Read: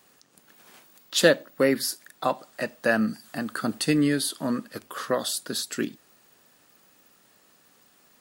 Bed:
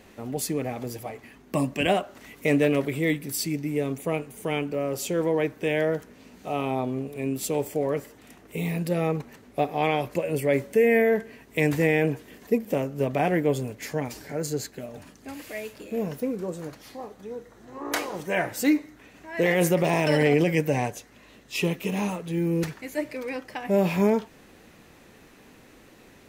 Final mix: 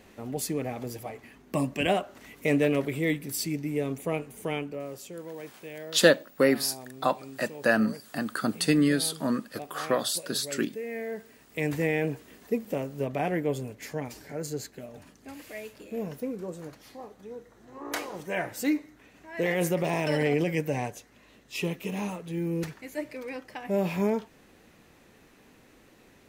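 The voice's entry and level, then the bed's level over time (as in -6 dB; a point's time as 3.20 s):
4.80 s, -0.5 dB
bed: 4.46 s -2.5 dB
5.24 s -16.5 dB
10.88 s -16.5 dB
11.74 s -5 dB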